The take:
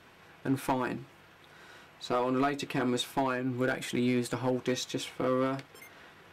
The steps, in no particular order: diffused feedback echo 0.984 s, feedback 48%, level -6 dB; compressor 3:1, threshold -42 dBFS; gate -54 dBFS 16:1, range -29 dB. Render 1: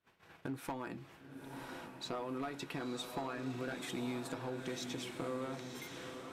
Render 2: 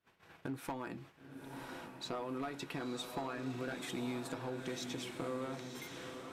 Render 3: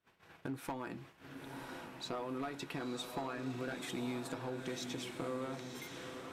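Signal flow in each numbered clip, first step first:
gate > compressor > diffused feedback echo; compressor > gate > diffused feedback echo; compressor > diffused feedback echo > gate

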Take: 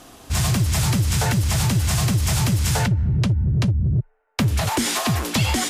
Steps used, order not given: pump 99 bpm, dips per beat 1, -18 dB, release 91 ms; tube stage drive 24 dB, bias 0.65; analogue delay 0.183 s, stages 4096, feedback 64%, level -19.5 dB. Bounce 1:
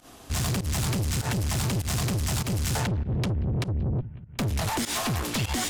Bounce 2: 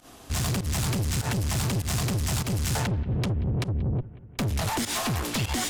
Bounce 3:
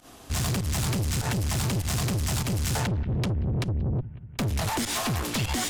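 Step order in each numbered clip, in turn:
analogue delay > tube stage > pump; tube stage > pump > analogue delay; pump > analogue delay > tube stage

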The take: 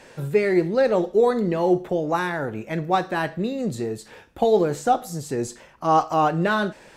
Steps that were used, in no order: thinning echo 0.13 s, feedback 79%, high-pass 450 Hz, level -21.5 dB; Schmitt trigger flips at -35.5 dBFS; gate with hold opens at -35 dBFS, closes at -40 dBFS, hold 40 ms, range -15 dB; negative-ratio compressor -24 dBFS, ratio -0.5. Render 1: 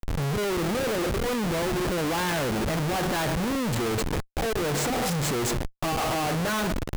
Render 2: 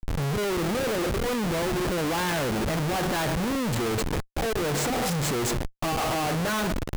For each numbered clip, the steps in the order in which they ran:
negative-ratio compressor > thinning echo > gate with hold > Schmitt trigger; negative-ratio compressor > thinning echo > Schmitt trigger > gate with hold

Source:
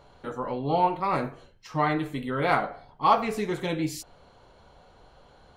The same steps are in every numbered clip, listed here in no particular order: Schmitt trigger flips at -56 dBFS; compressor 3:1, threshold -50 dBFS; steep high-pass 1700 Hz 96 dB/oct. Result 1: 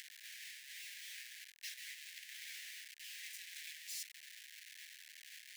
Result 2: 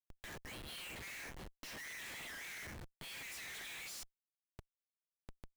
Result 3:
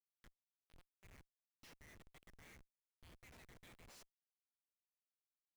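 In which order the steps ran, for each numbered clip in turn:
Schmitt trigger > compressor > steep high-pass; steep high-pass > Schmitt trigger > compressor; compressor > steep high-pass > Schmitt trigger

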